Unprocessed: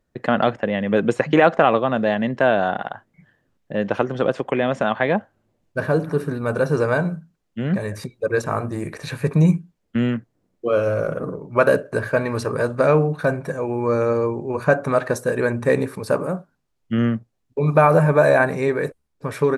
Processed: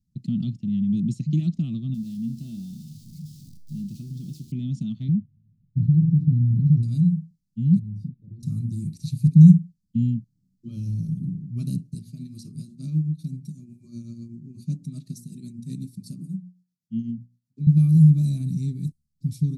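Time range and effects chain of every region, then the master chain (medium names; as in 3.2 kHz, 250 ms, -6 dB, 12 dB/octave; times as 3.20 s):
1.94–4.52 s: jump at every zero crossing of -29 dBFS + feedback comb 76 Hz, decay 0.55 s, mix 70%
5.08–6.83 s: low-pass 1.6 kHz + peaking EQ 120 Hz +10.5 dB 1.2 oct + compression, threshold -16 dBFS
7.79–8.43 s: doubling 38 ms -6 dB + compression 4:1, threshold -29 dBFS + Savitzky-Golay filter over 65 samples
11.94–17.67 s: high-pass 180 Hz + hum notches 60/120/180/240/300/360/420/480 Hz + tremolo triangle 8 Hz, depth 65%
whole clip: dynamic bell 1.1 kHz, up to +5 dB, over -32 dBFS, Q 1.7; elliptic band-stop 170–4500 Hz, stop band 50 dB; peaking EQ 260 Hz +14.5 dB 2.7 oct; trim -5 dB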